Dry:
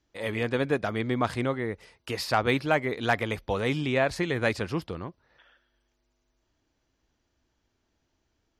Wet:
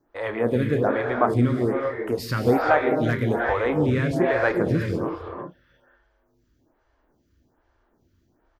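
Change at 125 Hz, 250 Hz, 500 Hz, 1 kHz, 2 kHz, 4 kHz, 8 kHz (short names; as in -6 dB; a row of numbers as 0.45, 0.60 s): +7.0 dB, +7.0 dB, +6.5 dB, +5.0 dB, +2.5 dB, -5.0 dB, n/a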